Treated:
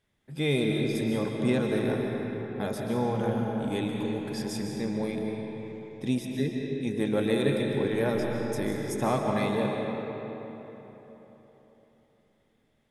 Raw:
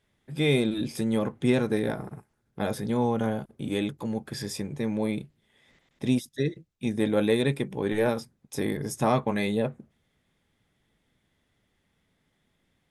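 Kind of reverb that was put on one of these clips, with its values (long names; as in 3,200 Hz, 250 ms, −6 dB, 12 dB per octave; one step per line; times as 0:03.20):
comb and all-pass reverb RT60 3.9 s, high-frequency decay 0.6×, pre-delay 100 ms, DRR 0.5 dB
level −3.5 dB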